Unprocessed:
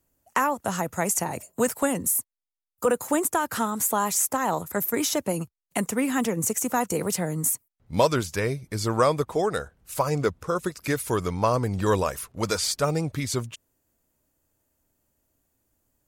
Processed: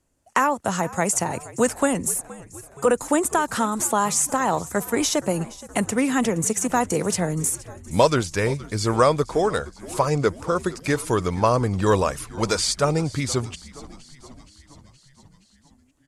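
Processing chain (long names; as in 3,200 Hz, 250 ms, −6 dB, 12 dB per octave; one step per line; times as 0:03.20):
low-pass filter 10,000 Hz 24 dB per octave
on a send: echo with shifted repeats 471 ms, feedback 64%, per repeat −69 Hz, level −19 dB
on the sum: level +3.5 dB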